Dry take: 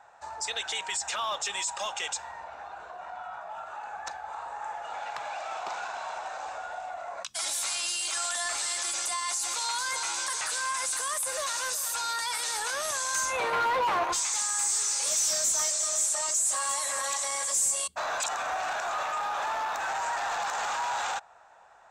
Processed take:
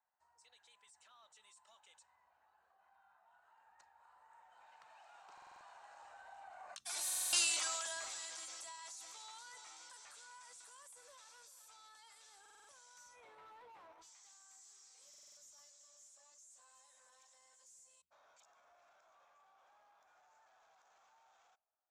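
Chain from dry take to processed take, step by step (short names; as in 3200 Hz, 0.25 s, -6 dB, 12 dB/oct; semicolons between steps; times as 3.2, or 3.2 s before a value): Doppler pass-by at 7.36, 23 m/s, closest 3.1 m; stuck buffer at 5.33/7.05/12.41/15.09, samples 2048, times 5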